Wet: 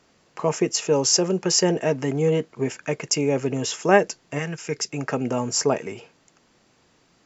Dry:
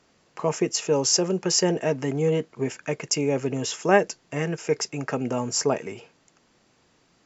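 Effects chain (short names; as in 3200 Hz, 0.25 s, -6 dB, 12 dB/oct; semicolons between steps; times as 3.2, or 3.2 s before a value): 4.38–4.9 bell 290 Hz -> 960 Hz -9.5 dB 1.8 oct; gain +2 dB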